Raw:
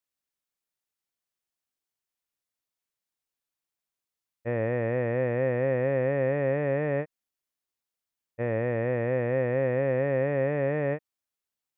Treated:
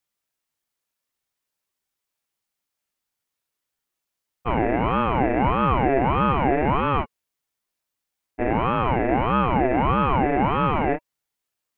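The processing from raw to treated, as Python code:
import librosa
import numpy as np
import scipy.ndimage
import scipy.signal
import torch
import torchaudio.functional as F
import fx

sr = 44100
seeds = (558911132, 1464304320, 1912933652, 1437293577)

y = fx.small_body(x, sr, hz=(770.0, 1500.0, 2500.0), ring_ms=45, db=7)
y = fx.ring_lfo(y, sr, carrier_hz=430.0, swing_pct=70, hz=1.6)
y = F.gain(torch.from_numpy(y), 8.5).numpy()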